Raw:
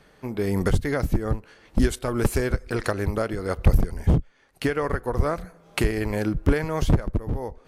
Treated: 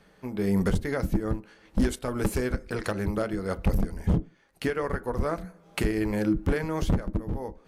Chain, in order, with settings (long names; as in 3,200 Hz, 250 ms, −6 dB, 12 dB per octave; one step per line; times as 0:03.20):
gain into a clipping stage and back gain 14.5 dB
on a send: convolution reverb RT60 0.30 s, pre-delay 3 ms, DRR 12 dB
on the sum: level −4 dB